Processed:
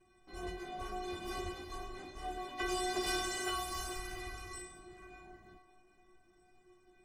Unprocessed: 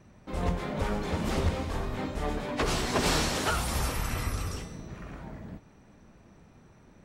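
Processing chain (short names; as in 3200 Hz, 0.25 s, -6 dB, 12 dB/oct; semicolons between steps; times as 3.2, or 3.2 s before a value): metallic resonator 360 Hz, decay 0.42 s, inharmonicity 0.008; narrowing echo 0.433 s, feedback 42%, band-pass 730 Hz, level -12 dB; gain +9 dB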